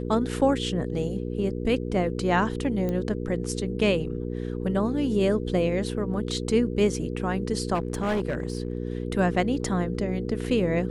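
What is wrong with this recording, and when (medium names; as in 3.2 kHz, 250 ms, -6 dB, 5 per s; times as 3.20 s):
hum 60 Hz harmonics 8 -31 dBFS
2.89 s: pop -18 dBFS
7.74–8.77 s: clipped -22 dBFS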